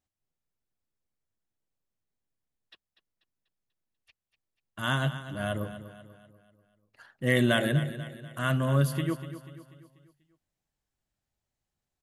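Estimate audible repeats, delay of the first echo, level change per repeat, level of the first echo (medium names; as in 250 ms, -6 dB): 4, 244 ms, -6.5 dB, -13.0 dB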